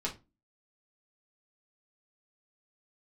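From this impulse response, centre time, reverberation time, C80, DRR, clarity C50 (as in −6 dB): 14 ms, 0.25 s, 22.0 dB, −4.0 dB, 13.0 dB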